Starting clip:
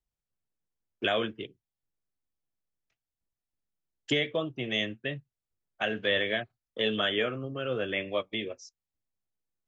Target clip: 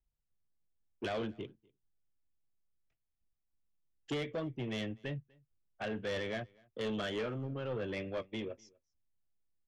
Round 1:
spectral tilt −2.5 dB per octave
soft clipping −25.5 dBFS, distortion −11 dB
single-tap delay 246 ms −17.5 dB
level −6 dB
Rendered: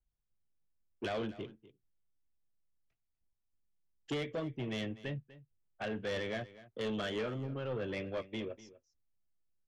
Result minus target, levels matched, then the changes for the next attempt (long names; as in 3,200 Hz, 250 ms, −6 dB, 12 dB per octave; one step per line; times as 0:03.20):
echo-to-direct +10 dB
change: single-tap delay 246 ms −27.5 dB